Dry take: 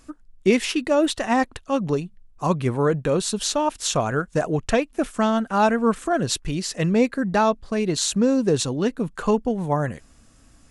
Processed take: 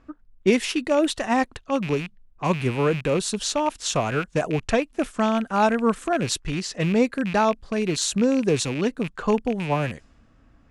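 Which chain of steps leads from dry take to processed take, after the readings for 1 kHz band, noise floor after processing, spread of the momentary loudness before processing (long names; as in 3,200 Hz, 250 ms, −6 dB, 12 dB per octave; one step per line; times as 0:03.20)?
−1.0 dB, −57 dBFS, 5 LU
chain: loose part that buzzes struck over −32 dBFS, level −22 dBFS
low-pass that shuts in the quiet parts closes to 2,000 Hz, open at −19 dBFS
harmonic generator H 3 −24 dB, 5 −42 dB, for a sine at −5.5 dBFS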